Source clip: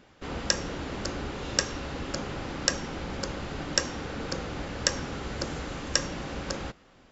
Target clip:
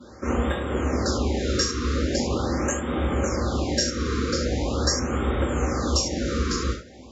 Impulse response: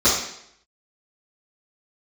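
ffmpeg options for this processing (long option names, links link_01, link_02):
-filter_complex "[0:a]acompressor=threshold=-35dB:ratio=2.5[link_01];[1:a]atrim=start_sample=2205,afade=type=out:start_time=0.17:duration=0.01,atrim=end_sample=7938[link_02];[link_01][link_02]afir=irnorm=-1:irlink=0,afftfilt=real='re*(1-between(b*sr/1024,710*pow(5400/710,0.5+0.5*sin(2*PI*0.42*pts/sr))/1.41,710*pow(5400/710,0.5+0.5*sin(2*PI*0.42*pts/sr))*1.41))':imag='im*(1-between(b*sr/1024,710*pow(5400/710,0.5+0.5*sin(2*PI*0.42*pts/sr))/1.41,710*pow(5400/710,0.5+0.5*sin(2*PI*0.42*pts/sr))*1.41))':win_size=1024:overlap=0.75,volume=-8.5dB"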